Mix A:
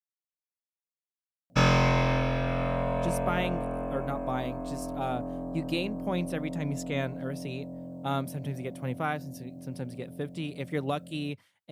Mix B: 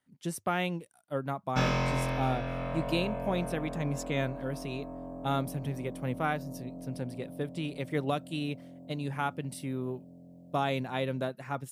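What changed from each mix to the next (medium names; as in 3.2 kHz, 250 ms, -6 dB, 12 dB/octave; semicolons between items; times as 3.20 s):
speech: entry -2.80 s; background -6.0 dB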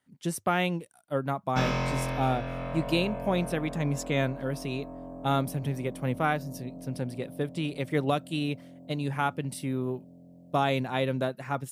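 speech +4.0 dB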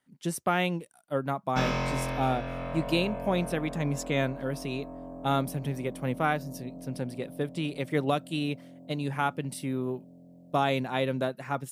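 master: add peaking EQ 100 Hz -9 dB 0.43 oct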